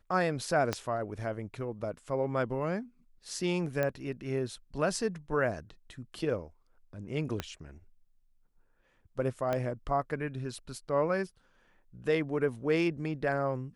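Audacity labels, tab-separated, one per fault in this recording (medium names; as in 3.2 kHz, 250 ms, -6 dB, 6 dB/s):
0.730000	0.730000	pop -15 dBFS
3.830000	3.830000	pop -18 dBFS
7.400000	7.400000	pop -18 dBFS
9.530000	9.530000	pop -18 dBFS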